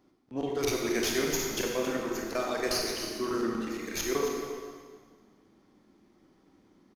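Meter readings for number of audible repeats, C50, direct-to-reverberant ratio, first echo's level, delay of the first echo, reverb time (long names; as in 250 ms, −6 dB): 1, 1.0 dB, −1.0 dB, −10.5 dB, 272 ms, 1.7 s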